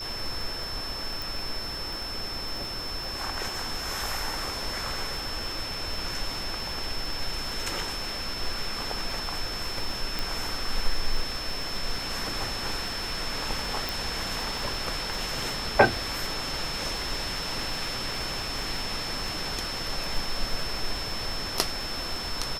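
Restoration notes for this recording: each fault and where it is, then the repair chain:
surface crackle 35 per second −34 dBFS
whistle 5,300 Hz −34 dBFS
0:01.22: click
0:10.19: click
0:13.89: click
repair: click removal
notch filter 5,300 Hz, Q 30

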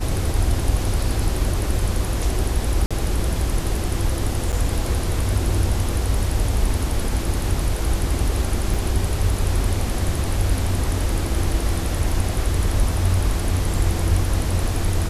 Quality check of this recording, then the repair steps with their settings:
0:02.86–0:02.91: drop-out 46 ms
0:04.52–0:04.53: drop-out 8 ms
0:08.74: drop-out 4.6 ms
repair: repair the gap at 0:02.86, 46 ms
repair the gap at 0:04.52, 8 ms
repair the gap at 0:08.74, 4.6 ms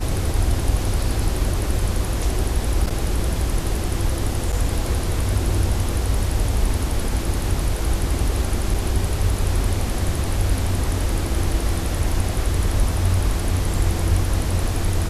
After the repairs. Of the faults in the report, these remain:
none of them is left

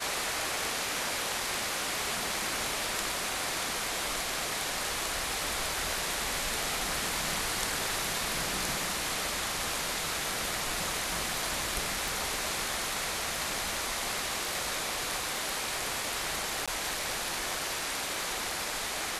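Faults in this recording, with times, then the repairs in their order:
0:12.08: click
0:16.66–0:16.68: drop-out 16 ms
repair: click removal
repair the gap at 0:16.66, 16 ms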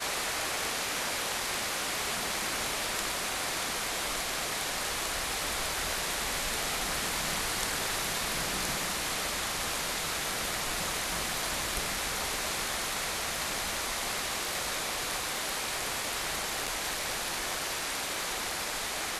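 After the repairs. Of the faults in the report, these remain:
0:12.08: click

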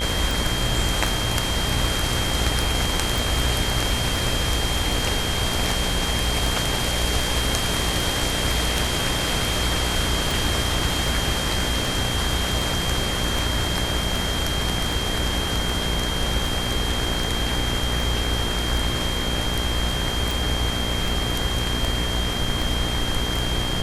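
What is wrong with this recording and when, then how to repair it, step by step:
mains buzz 60 Hz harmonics 37 −28 dBFS
scratch tick 78 rpm
whistle 3,200 Hz −28 dBFS
0:03.18: click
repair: click removal
notch filter 3,200 Hz, Q 30
hum removal 60 Hz, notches 37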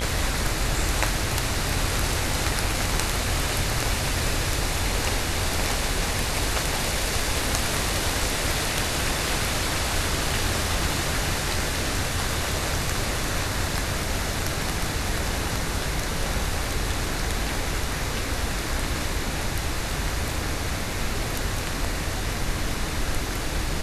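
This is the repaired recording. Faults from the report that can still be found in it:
none of them is left

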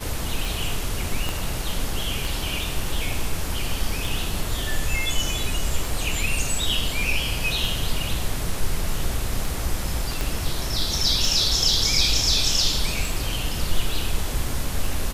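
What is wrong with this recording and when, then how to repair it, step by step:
scratch tick 33 1/3 rpm
0:01.29: click
0:10.21: click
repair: click removal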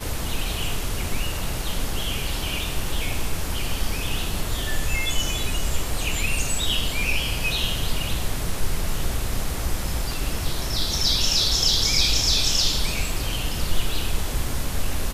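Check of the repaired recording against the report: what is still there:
0:01.29: click
0:10.21: click

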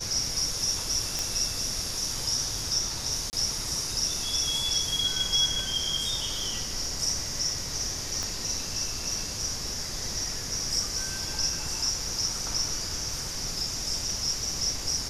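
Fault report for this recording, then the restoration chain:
0:01.19: click −13 dBFS
0:03.30–0:03.33: drop-out 29 ms
0:08.23: click −18 dBFS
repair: click removal
repair the gap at 0:03.30, 29 ms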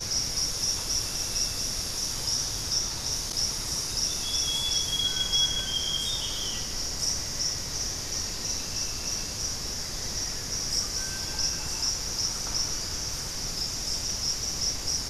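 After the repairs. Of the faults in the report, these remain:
0:08.23: click

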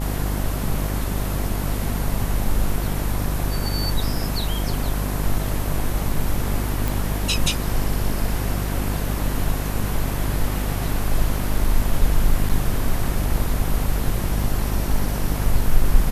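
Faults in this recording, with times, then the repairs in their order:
mains buzz 50 Hz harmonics 21 −25 dBFS
0:06.88: click
0:12.49–0:12.50: drop-out 6.3 ms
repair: click removal
hum removal 50 Hz, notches 21
repair the gap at 0:12.49, 6.3 ms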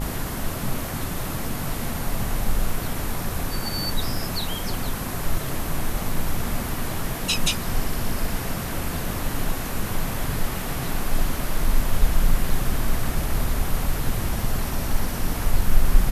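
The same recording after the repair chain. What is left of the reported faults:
none of them is left

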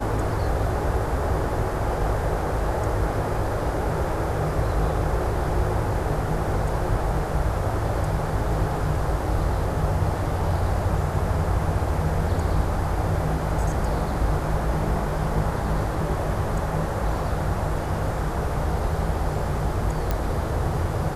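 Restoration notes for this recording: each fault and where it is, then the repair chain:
0:20.11: click −11 dBFS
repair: click removal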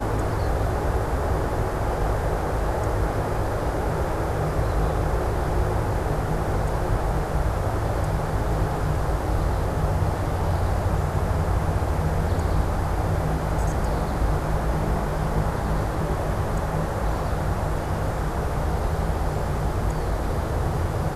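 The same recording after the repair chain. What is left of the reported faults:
none of them is left

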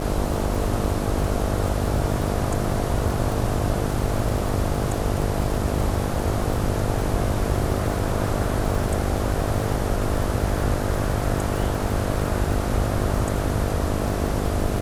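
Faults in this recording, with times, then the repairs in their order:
mains buzz 50 Hz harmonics 14 −27 dBFS
surface crackle 45 per second −27 dBFS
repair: click removal
hum removal 50 Hz, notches 14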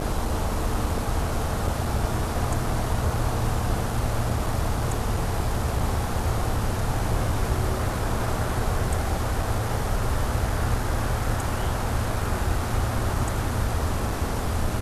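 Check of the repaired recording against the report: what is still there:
none of them is left

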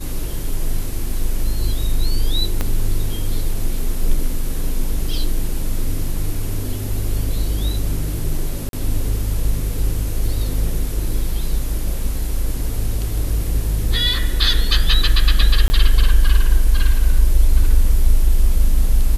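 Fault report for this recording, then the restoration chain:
0:02.61: click −7 dBFS
0:08.69–0:08.73: drop-out 42 ms
0:15.68–0:15.70: drop-out 20 ms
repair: click removal
repair the gap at 0:08.69, 42 ms
repair the gap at 0:15.68, 20 ms

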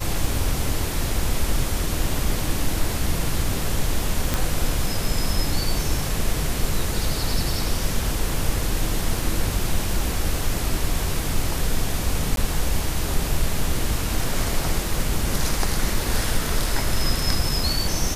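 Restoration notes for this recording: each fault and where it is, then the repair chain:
0:04.34: click
0:12.36–0:12.37: drop-out 12 ms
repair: click removal
repair the gap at 0:12.36, 12 ms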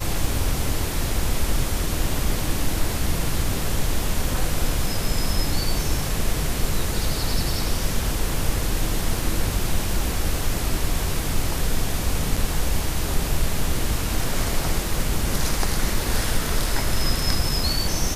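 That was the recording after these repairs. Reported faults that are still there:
none of them is left

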